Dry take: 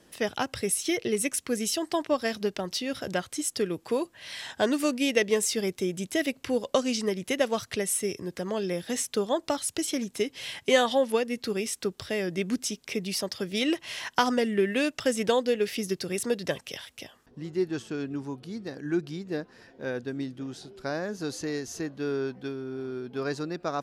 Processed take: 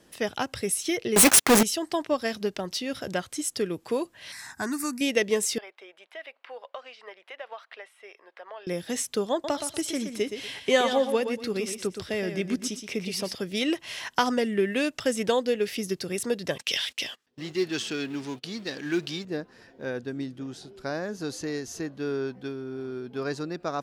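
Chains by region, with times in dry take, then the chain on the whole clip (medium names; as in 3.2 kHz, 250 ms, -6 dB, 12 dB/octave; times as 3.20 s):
1.16–1.63 s: square wave that keeps the level + high-pass 460 Hz 6 dB/octave + waveshaping leveller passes 5
4.32–5.01 s: treble shelf 4.5 kHz +7 dB + static phaser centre 1.3 kHz, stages 4
5.58–8.67 s: high-pass 680 Hz 24 dB/octave + compression 2.5:1, threshold -34 dBFS + distance through air 430 m
9.32–13.35 s: treble shelf 7.6 kHz -4 dB + feedback delay 120 ms, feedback 25%, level -8.5 dB
16.58–19.25 s: companding laws mixed up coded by mu + frequency weighting D + gate -43 dBFS, range -25 dB
whole clip: none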